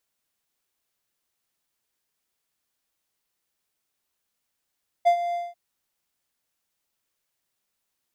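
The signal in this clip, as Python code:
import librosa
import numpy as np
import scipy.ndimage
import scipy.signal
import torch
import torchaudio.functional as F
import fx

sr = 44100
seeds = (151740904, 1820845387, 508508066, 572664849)

y = fx.adsr_tone(sr, wave='triangle', hz=695.0, attack_ms=23.0, decay_ms=87.0, sustain_db=-11.5, held_s=0.29, release_ms=202.0, level_db=-11.0)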